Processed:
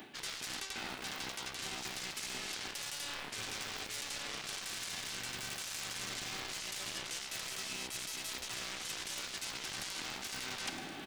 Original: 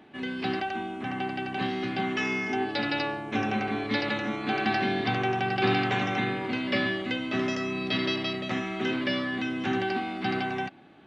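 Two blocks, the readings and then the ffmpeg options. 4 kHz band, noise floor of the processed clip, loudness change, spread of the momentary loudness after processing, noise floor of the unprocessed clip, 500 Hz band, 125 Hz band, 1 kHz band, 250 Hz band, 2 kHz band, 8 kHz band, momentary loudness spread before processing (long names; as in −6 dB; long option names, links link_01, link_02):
−4.5 dB, −46 dBFS, −10.5 dB, 1 LU, −39 dBFS, −20.5 dB, −19.5 dB, −17.5 dB, −23.5 dB, −12.5 dB, can't be measured, 6 LU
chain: -filter_complex "[0:a]acrossover=split=3200[link_01][link_02];[link_02]acompressor=threshold=-42dB:ratio=4:attack=1:release=60[link_03];[link_01][link_03]amix=inputs=2:normalize=0,afftfilt=real='re*lt(hypot(re,im),0.224)':imag='im*lt(hypot(re,im),0.224)':win_size=1024:overlap=0.75,acrossover=split=130[link_04][link_05];[link_04]acrusher=samples=40:mix=1:aa=0.000001:lfo=1:lforange=64:lforate=1.1[link_06];[link_05]alimiter=level_in=3.5dB:limit=-24dB:level=0:latency=1:release=139,volume=-3.5dB[link_07];[link_06][link_07]amix=inputs=2:normalize=0,aeval=exprs='0.0596*(cos(1*acos(clip(val(0)/0.0596,-1,1)))-cos(1*PI/2))+0.00266*(cos(6*acos(clip(val(0)/0.0596,-1,1)))-cos(6*PI/2))+0.0211*(cos(7*acos(clip(val(0)/0.0596,-1,1)))-cos(7*PI/2))':channel_layout=same,aecho=1:1:107|214|321|428|535:0.0841|0.0496|0.0293|0.0173|0.0102,crystalizer=i=5.5:c=0,areverse,acompressor=threshold=-41dB:ratio=12,areverse,volume=3.5dB"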